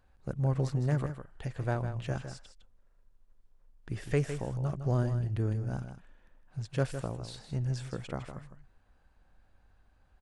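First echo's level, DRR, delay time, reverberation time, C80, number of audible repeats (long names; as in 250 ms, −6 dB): −9.5 dB, no reverb audible, 158 ms, no reverb audible, no reverb audible, 1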